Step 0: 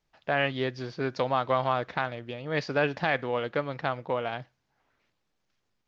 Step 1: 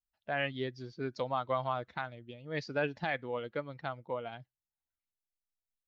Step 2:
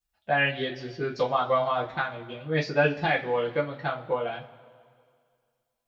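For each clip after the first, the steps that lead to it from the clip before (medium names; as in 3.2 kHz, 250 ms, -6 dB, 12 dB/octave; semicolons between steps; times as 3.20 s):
expander on every frequency bin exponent 1.5; trim -5 dB
two-slope reverb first 0.23 s, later 2.1 s, from -22 dB, DRR -5 dB; trim +3.5 dB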